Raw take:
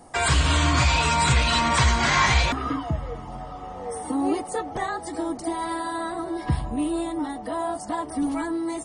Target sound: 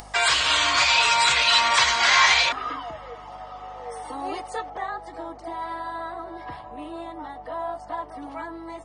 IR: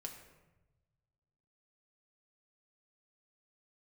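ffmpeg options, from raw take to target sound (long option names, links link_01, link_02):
-filter_complex "[0:a]acrossover=split=460 5800:gain=0.0631 1 0.112[link_01][link_02][link_03];[link_01][link_02][link_03]amix=inputs=3:normalize=0,aeval=exprs='val(0)+0.00282*(sin(2*PI*50*n/s)+sin(2*PI*2*50*n/s)/2+sin(2*PI*3*50*n/s)/3+sin(2*PI*4*50*n/s)/4+sin(2*PI*5*50*n/s)/5)':channel_layout=same,acompressor=mode=upward:threshold=-38dB:ratio=2.5,asetnsamples=nb_out_samples=441:pad=0,asendcmd='2.49 highshelf g 4;4.7 highshelf g -9.5',highshelf=frequency=2500:gain=11.5"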